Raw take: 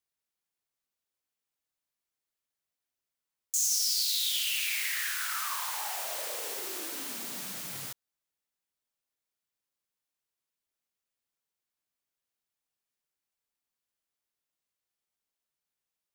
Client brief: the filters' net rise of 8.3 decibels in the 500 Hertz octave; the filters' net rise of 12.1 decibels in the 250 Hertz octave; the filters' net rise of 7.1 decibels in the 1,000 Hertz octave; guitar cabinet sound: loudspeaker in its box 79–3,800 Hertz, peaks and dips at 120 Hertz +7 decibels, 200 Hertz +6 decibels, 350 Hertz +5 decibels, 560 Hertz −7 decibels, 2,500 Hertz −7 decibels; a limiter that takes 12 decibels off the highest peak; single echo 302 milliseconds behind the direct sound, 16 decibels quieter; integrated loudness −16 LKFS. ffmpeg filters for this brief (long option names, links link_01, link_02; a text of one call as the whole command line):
ffmpeg -i in.wav -af "equalizer=frequency=250:width_type=o:gain=8,equalizer=frequency=500:width_type=o:gain=8,equalizer=frequency=1000:width_type=o:gain=7,alimiter=level_in=4dB:limit=-24dB:level=0:latency=1,volume=-4dB,highpass=79,equalizer=frequency=120:width_type=q:width=4:gain=7,equalizer=frequency=200:width_type=q:width=4:gain=6,equalizer=frequency=350:width_type=q:width=4:gain=5,equalizer=frequency=560:width_type=q:width=4:gain=-7,equalizer=frequency=2500:width_type=q:width=4:gain=-7,lowpass=frequency=3800:width=0.5412,lowpass=frequency=3800:width=1.3066,aecho=1:1:302:0.158,volume=24dB" out.wav